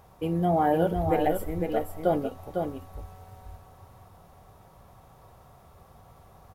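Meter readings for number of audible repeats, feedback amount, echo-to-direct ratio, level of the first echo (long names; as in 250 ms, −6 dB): 1, repeats not evenly spaced, −5.5 dB, −5.5 dB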